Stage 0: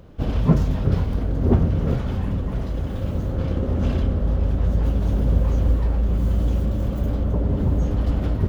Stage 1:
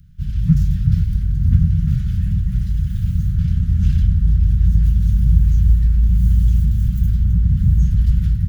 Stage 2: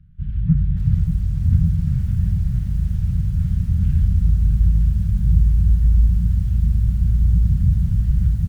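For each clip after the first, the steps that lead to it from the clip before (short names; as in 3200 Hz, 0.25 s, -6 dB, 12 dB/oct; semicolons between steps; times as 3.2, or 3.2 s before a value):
elliptic band-stop 170–1600 Hz, stop band 40 dB; bell 2000 Hz -12 dB 2.7 oct; AGC gain up to 6.5 dB; gain +1.5 dB
air absorption 470 m; feedback echo 0.245 s, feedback 59%, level -23.5 dB; lo-fi delay 0.58 s, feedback 55%, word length 7-bit, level -9 dB; gain -2.5 dB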